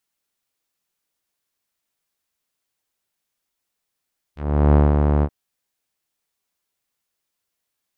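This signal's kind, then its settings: synth note saw D2 12 dB/oct, low-pass 910 Hz, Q 0.93, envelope 2.5 oct, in 0.08 s, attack 0.378 s, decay 0.19 s, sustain -4.5 dB, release 0.06 s, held 0.87 s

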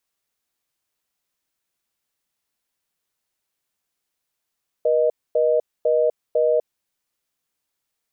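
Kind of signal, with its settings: call progress tone reorder tone, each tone -18 dBFS 1.84 s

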